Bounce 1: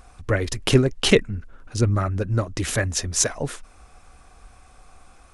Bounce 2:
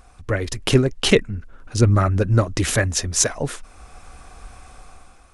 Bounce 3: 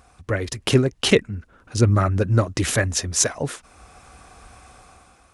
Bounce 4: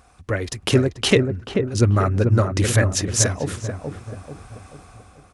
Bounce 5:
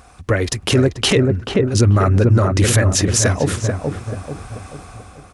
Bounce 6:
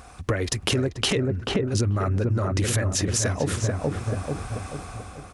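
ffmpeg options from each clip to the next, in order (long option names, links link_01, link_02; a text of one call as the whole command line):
ffmpeg -i in.wav -af "dynaudnorm=framelen=120:gausssize=9:maxgain=8.5dB,volume=-1dB" out.wav
ffmpeg -i in.wav -af "highpass=64,volume=-1dB" out.wav
ffmpeg -i in.wav -filter_complex "[0:a]asplit=2[link_01][link_02];[link_02]adelay=437,lowpass=frequency=890:poles=1,volume=-4dB,asplit=2[link_03][link_04];[link_04]adelay=437,lowpass=frequency=890:poles=1,volume=0.49,asplit=2[link_05][link_06];[link_06]adelay=437,lowpass=frequency=890:poles=1,volume=0.49,asplit=2[link_07][link_08];[link_08]adelay=437,lowpass=frequency=890:poles=1,volume=0.49,asplit=2[link_09][link_10];[link_10]adelay=437,lowpass=frequency=890:poles=1,volume=0.49,asplit=2[link_11][link_12];[link_12]adelay=437,lowpass=frequency=890:poles=1,volume=0.49[link_13];[link_01][link_03][link_05][link_07][link_09][link_11][link_13]amix=inputs=7:normalize=0" out.wav
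ffmpeg -i in.wav -af "alimiter=level_in=12.5dB:limit=-1dB:release=50:level=0:latency=1,volume=-4.5dB" out.wav
ffmpeg -i in.wav -af "acompressor=threshold=-21dB:ratio=6" out.wav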